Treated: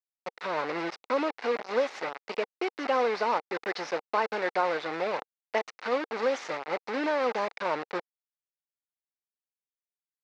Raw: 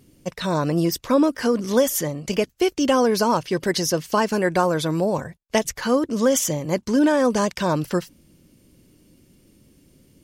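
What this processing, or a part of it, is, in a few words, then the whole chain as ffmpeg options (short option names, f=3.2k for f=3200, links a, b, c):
hand-held game console: -af "acrusher=bits=3:mix=0:aa=0.000001,highpass=420,equalizer=f=470:t=q:w=4:g=4,equalizer=f=810:t=q:w=4:g=6,equalizer=f=1.3k:t=q:w=4:g=4,equalizer=f=2.1k:t=q:w=4:g=5,equalizer=f=3.2k:t=q:w=4:g=-7,lowpass=f=4.1k:w=0.5412,lowpass=f=4.1k:w=1.3066,volume=-9dB"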